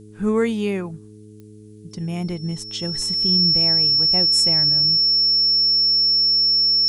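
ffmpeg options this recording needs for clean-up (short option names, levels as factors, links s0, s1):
-af "adeclick=t=4,bandreject=f=106.1:t=h:w=4,bandreject=f=212.2:t=h:w=4,bandreject=f=318.3:t=h:w=4,bandreject=f=424.4:t=h:w=4,bandreject=f=5400:w=30,agate=range=0.0891:threshold=0.0178"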